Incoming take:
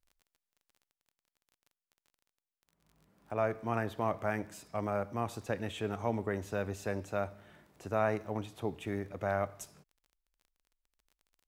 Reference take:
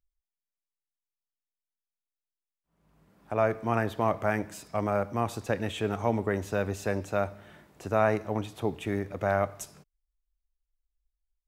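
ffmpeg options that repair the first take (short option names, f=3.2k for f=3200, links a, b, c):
-af "adeclick=t=4,asetnsamples=n=441:p=0,asendcmd='0.9 volume volume 6dB',volume=0dB"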